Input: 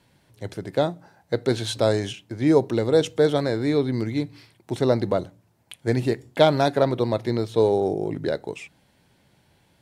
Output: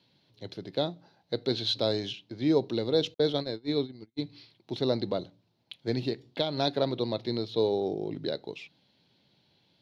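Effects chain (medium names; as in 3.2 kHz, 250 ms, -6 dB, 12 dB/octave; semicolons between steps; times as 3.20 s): high-pass 130 Hz 12 dB/octave; 3.14–4.19 s: gate -22 dBFS, range -52 dB; FFT filter 310 Hz 0 dB, 1.8 kHz -6 dB, 4.1 kHz +10 dB, 8.1 kHz -14 dB; 6.08–6.58 s: compression 6:1, threshold -19 dBFS, peak gain reduction 8 dB; peaking EQ 8.2 kHz -8 dB 0.26 oct; trim -6 dB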